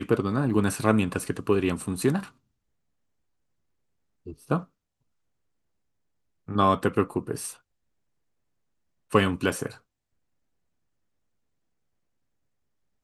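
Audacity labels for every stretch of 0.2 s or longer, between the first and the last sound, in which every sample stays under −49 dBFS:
2.310000	4.260000	silence
4.640000	6.480000	silence
7.570000	9.100000	silence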